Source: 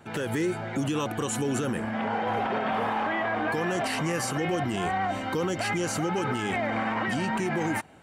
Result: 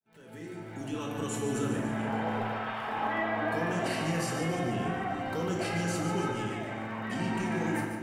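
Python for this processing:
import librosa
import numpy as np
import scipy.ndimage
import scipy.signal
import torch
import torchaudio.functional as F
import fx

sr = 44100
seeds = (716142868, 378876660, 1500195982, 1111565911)

y = fx.fade_in_head(x, sr, length_s=1.47)
y = fx.highpass(y, sr, hz=940.0, slope=12, at=(2.42, 2.88))
y = fx.high_shelf(y, sr, hz=4000.0, db=-10.0, at=(4.63, 5.26))
y = fx.over_compress(y, sr, threshold_db=-32.0, ratio=-0.5, at=(6.3, 7.1))
y = fx.dmg_crackle(y, sr, seeds[0], per_s=19.0, level_db=-37.0)
y = fx.echo_feedback(y, sr, ms=145, feedback_pct=56, wet_db=-8.5)
y = fx.room_shoebox(y, sr, seeds[1], volume_m3=570.0, walls='mixed', distance_m=1.5)
y = y * 10.0 ** (-8.0 / 20.0)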